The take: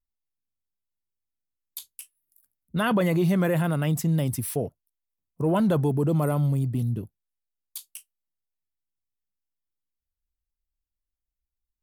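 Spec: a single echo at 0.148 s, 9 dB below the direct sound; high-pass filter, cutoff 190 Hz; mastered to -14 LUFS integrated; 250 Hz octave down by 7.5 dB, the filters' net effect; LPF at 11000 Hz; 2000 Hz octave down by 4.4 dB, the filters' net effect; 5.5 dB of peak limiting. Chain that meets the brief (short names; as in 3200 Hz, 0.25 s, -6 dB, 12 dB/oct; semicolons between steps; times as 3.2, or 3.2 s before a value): HPF 190 Hz; LPF 11000 Hz; bell 250 Hz -8 dB; bell 2000 Hz -6 dB; limiter -21.5 dBFS; echo 0.148 s -9 dB; gain +18 dB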